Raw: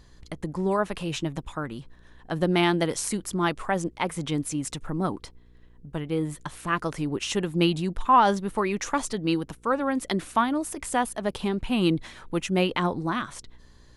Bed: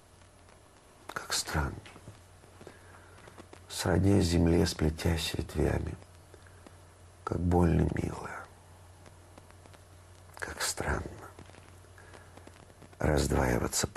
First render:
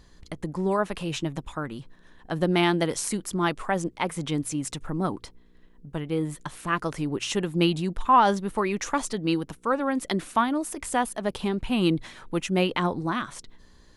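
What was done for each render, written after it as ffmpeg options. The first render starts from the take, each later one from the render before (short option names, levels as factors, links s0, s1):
-af "bandreject=f=60:t=h:w=4,bandreject=f=120:t=h:w=4"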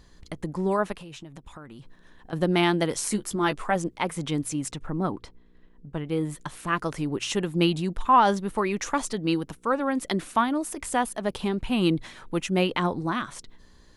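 -filter_complex "[0:a]asettb=1/sr,asplit=3[s0][s1][s2];[s0]atrim=end=0.924[s3];[s1]atrim=start=0.92:end=2.33,asetpts=PTS-STARTPTS,afade=t=in:d=0.004:c=qsin,afade=t=out:st=1.406:d=0.004:c=qsin,acompressor=threshold=0.01:ratio=5:attack=3.2:release=140:knee=1:detection=peak[s4];[s2]atrim=start=2.326[s5];[s3][s4]acrossfade=d=0.004:c1=hsin:c2=qsin[s6];[s6][s5]acrossfade=d=0.004:c1=qsin:c2=hsin,asettb=1/sr,asplit=3[s7][s8][s9];[s7]atrim=end=3.014[s10];[s8]atrim=start=3.01:end=3.76,asetpts=PTS-STARTPTS,afade=t=in:d=0.004:c=qsin,afade=t=out:st=0.746:d=0.004:c=qsin,asplit=2[s11][s12];[s12]adelay=14,volume=0.447[s13];[s11][s13]amix=inputs=2:normalize=0,atrim=end_sample=33075[s14];[s9]atrim=start=3.756[s15];[s10][s14]acrossfade=d=0.004:c1=hsin:c2=qsin[s16];[s16][s15]acrossfade=d=0.004:c1=qsin:c2=hsin,asettb=1/sr,asplit=3[s17][s18][s19];[s17]atrim=end=4.714[s20];[s18]atrim=start=4.71:end=6.06,asetpts=PTS-STARTPTS,afade=t=in:d=0.004:c=qsin,afade=t=out:st=1.346:d=0.004:c=qsin,lowpass=f=3200:p=1[s21];[s19]atrim=start=6.056[s22];[s20][s21]acrossfade=d=0.004:c1=hsin:c2=qsin[s23];[s23][s22]acrossfade=d=0.004:c1=qsin:c2=hsin"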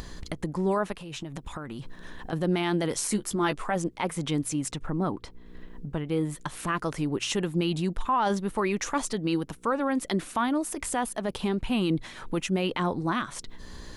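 -af "acompressor=mode=upward:threshold=0.0398:ratio=2.5,alimiter=limit=0.141:level=0:latency=1:release=17"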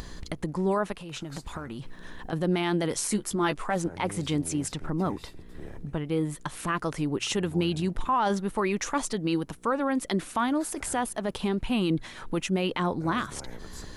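-filter_complex "[1:a]volume=0.15[s0];[0:a][s0]amix=inputs=2:normalize=0"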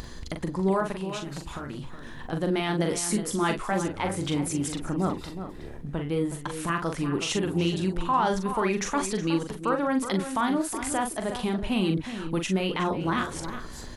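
-filter_complex "[0:a]asplit=2[s0][s1];[s1]adelay=42,volume=0.501[s2];[s0][s2]amix=inputs=2:normalize=0,asplit=2[s3][s4];[s4]adelay=367.3,volume=0.316,highshelf=f=4000:g=-8.27[s5];[s3][s5]amix=inputs=2:normalize=0"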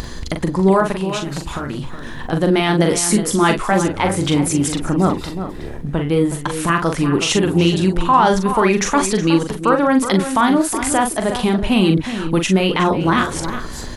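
-af "volume=3.55"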